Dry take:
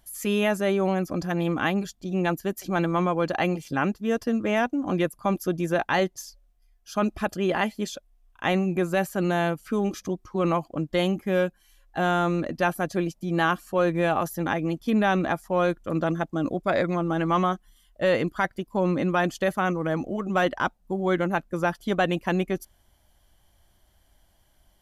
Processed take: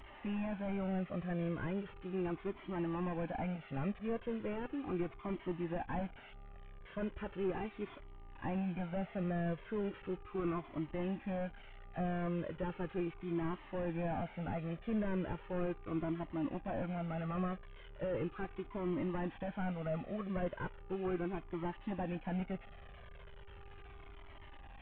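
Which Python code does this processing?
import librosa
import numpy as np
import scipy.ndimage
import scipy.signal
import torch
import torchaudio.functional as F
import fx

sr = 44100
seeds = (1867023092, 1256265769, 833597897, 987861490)

y = fx.delta_mod(x, sr, bps=16000, step_db=-38.5)
y = fx.dmg_buzz(y, sr, base_hz=400.0, harmonics=3, level_db=-54.0, tilt_db=-4, odd_only=False)
y = fx.comb_cascade(y, sr, direction='falling', hz=0.37)
y = y * librosa.db_to_amplitude(-6.0)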